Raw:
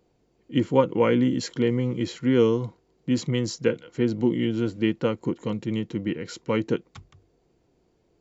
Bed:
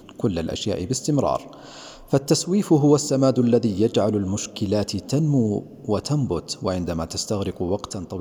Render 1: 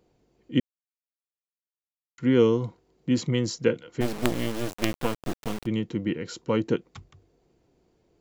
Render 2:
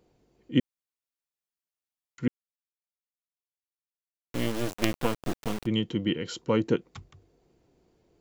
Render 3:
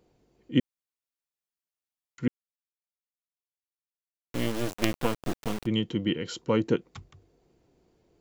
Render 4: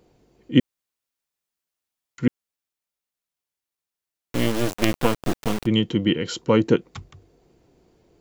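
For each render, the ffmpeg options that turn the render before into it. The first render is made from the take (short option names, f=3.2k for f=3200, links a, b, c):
-filter_complex "[0:a]asplit=3[a][b][c];[a]afade=t=out:st=4:d=0.02[d];[b]acrusher=bits=3:dc=4:mix=0:aa=0.000001,afade=t=in:st=4:d=0.02,afade=t=out:st=5.65:d=0.02[e];[c]afade=t=in:st=5.65:d=0.02[f];[d][e][f]amix=inputs=3:normalize=0,asettb=1/sr,asplit=3[g][h][i];[g]atrim=end=6.254[j];[h]atrim=start=6.25:end=6.66,asetpts=PTS-STARTPTS,afade=t=in:d=0.004:c=qsin,afade=t=out:st=0.406:d=0.004:c=qsin,equalizer=f=2.1k:t=o:w=0.44:g=-6.5[k];[i]atrim=start=6.656[l];[j][k]acrossfade=d=0.004:c1=hsin:c2=qsin[m];[m][l]acrossfade=d=0.004:c1=qsin:c2=hsin,asplit=3[n][o][p];[n]atrim=end=0.6,asetpts=PTS-STARTPTS,afade=t=out:st=0.596:d=0.004:c=hsin[q];[o]atrim=start=0.6:end=2.18,asetpts=PTS-STARTPTS,volume=0[r];[p]atrim=start=2.18,asetpts=PTS-STARTPTS,afade=t=in:d=0.004:c=hsin[s];[q][r][s]concat=n=3:v=0:a=1"
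-filter_complex "[0:a]asettb=1/sr,asplit=3[a][b][c];[a]atrim=end=5.754[d];[b]atrim=start=5.75:end=6.39,asetpts=PTS-STARTPTS,afade=t=in:d=0.004:c=qsin,afade=t=out:st=0.636:d=0.004:c=qsin,equalizer=f=3.1k:t=o:w=0.21:g=12[e];[c]atrim=start=6.386[f];[d][e]acrossfade=d=0.004:c1=hsin:c2=qsin[g];[g][f]acrossfade=d=0.004:c1=qsin:c2=hsin,asplit=3[h][i][j];[h]atrim=end=2.28,asetpts=PTS-STARTPTS,afade=t=out:st=2.276:d=0.004:c=hsin[k];[i]atrim=start=2.28:end=4.34,asetpts=PTS-STARTPTS,volume=0[l];[j]atrim=start=4.34,asetpts=PTS-STARTPTS,afade=t=in:d=0.004:c=hsin[m];[k][l][m]concat=n=3:v=0:a=1"
-af anull
-af "volume=7dB,alimiter=limit=-1dB:level=0:latency=1"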